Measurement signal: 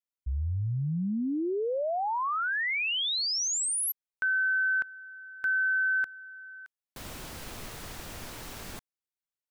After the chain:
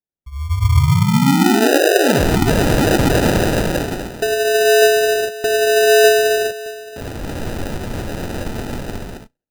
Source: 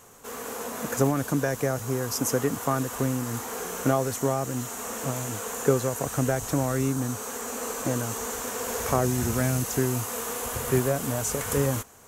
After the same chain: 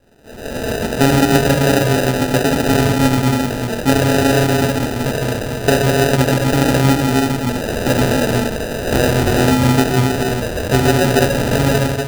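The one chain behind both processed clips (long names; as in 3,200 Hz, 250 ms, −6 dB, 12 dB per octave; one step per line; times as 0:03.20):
tuned comb filter 87 Hz, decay 0.26 s, mix 30%
reverb whose tail is shaped and stops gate 490 ms flat, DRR −4 dB
automatic gain control gain up to 15 dB
low-pass filter 5,500 Hz 12 dB per octave
decimation without filtering 40×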